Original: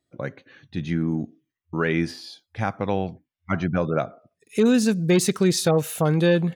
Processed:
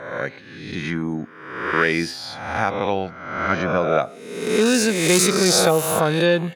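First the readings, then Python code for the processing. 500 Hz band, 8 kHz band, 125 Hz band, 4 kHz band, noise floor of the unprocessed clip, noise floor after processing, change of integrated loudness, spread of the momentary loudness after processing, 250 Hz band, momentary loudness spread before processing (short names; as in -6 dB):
+4.0 dB, +9.0 dB, -2.5 dB, +8.5 dB, -83 dBFS, -41 dBFS, +3.0 dB, 14 LU, -0.5 dB, 16 LU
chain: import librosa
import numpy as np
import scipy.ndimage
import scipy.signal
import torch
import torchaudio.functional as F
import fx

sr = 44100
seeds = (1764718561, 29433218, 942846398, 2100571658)

y = fx.spec_swells(x, sr, rise_s=1.01)
y = fx.low_shelf(y, sr, hz=280.0, db=-11.0)
y = y * librosa.db_to_amplitude(4.5)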